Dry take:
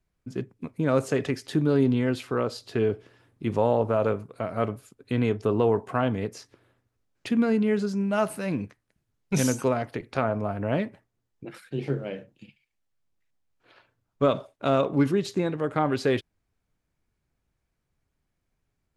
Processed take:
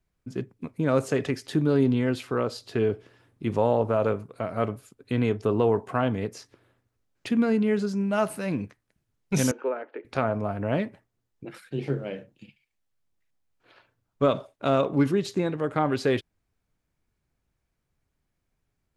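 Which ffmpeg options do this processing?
-filter_complex "[0:a]asettb=1/sr,asplit=3[a][b][c];[a]atrim=end=9.514[d];[b]atrim=start=9.51:end=10.05,asetpts=PTS-STARTPTS,afade=t=in:d=0.004:c=qsin,afade=t=out:st=0.536:d=0.004:c=qsin,highpass=f=370:w=0.5412,highpass=f=370:w=1.3066,equalizer=f=700:t=q:w=4:g=-9,equalizer=f=1.1k:t=q:w=4:g=-8,equalizer=f=2k:t=q:w=4:g=-8,lowpass=f=2.2k:w=0.5412,lowpass=f=2.2k:w=1.3066[e];[c]atrim=start=10.046[f];[d][e]acrossfade=d=0.004:c1=hsin:c2=qsin[g];[g][f]acrossfade=d=0.004:c1=qsin:c2=hsin"

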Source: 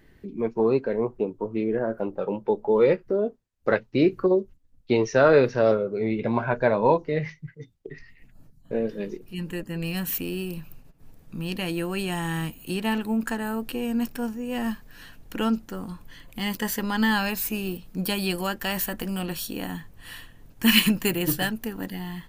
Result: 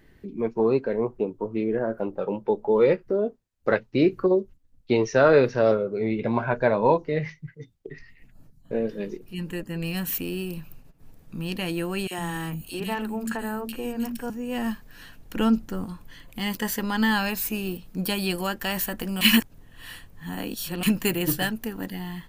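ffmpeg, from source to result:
-filter_complex "[0:a]asettb=1/sr,asplit=3[a][b][c];[a]atrim=end=12.074[d];[b]atrim=start=12.07:end=14.3,asetpts=PTS-STARTPTS,afade=t=in:d=0.004:c=qsin,afade=t=out:st=2.226:d=0.004:c=qsin,acrossover=split=230|2500[e][f][g];[f]adelay=40[h];[e]adelay=110[i];[i][h][g]amix=inputs=3:normalize=0,atrim=end_sample=98343[j];[c]atrim=start=14.296[k];[d][j]acrossfade=d=0.004:c1=hsin:c2=qsin[l];[l][k]acrossfade=d=0.004:c1=qsin:c2=hsin,asettb=1/sr,asplit=3[m][n][o];[m]atrim=end=15.364[p];[n]atrim=start=15.36:end=15.85,asetpts=PTS-STARTPTS,afade=t=in:d=0.004:c=qsin,afade=t=out:st=0.486:d=0.004:c=qsin,lowshelf=f=220:g=7.5[q];[o]atrim=start=15.846[r];[p][q]acrossfade=d=0.004:c1=hsin:c2=qsin[s];[s][r]acrossfade=d=0.004:c1=qsin:c2=hsin,asplit=3[t][u][v];[t]atrim=end=19.212[w];[u]atrim=start=19.208:end=20.832,asetpts=PTS-STARTPTS,areverse[x];[v]atrim=start=20.828[y];[w][x]acrossfade=d=0.004:c1=hsin:c2=hsin[z];[z][y]acrossfade=d=0.004:c1=hsin:c2=hsin"

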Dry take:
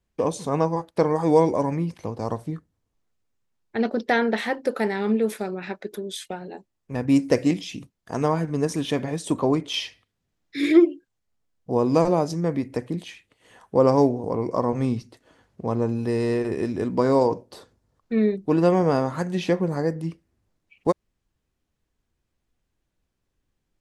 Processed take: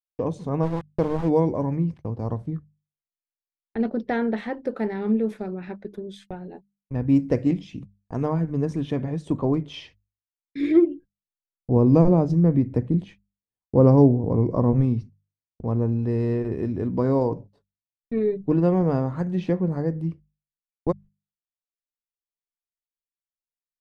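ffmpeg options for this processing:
-filter_complex "[0:a]asplit=3[a][b][c];[a]afade=t=out:st=0.62:d=0.02[d];[b]aeval=exprs='val(0)*gte(abs(val(0)),0.0398)':c=same,afade=t=in:st=0.62:d=0.02,afade=t=out:st=1.28:d=0.02[e];[c]afade=t=in:st=1.28:d=0.02[f];[d][e][f]amix=inputs=3:normalize=0,asplit=3[g][h][i];[g]afade=t=out:st=10.89:d=0.02[j];[h]lowshelf=f=450:g=7,afade=t=in:st=10.89:d=0.02,afade=t=out:st=14.8:d=0.02[k];[i]afade=t=in:st=14.8:d=0.02[l];[j][k][l]amix=inputs=3:normalize=0,asettb=1/sr,asplit=3[m][n][o];[m]atrim=end=17.364[p];[n]atrim=start=17.36:end=18.52,asetpts=PTS-STARTPTS,afade=t=in:d=0.004:c=qsin,afade=t=out:st=1.156:d=0.004:c=qsin,aecho=1:1:7.1:0.65,atrim=end_sample=51156[q];[o]atrim=start=18.516[r];[p][q]acrossfade=d=0.004:c1=hsin:c2=qsin[s];[s][r]acrossfade=d=0.004:c1=qsin:c2=hsin,agate=range=-48dB:threshold=-38dB:ratio=16:detection=peak,aemphasis=mode=reproduction:type=riaa,bandreject=f=50:t=h:w=6,bandreject=f=100:t=h:w=6,bandreject=f=150:t=h:w=6,bandreject=f=200:t=h:w=6,volume=-6.5dB"

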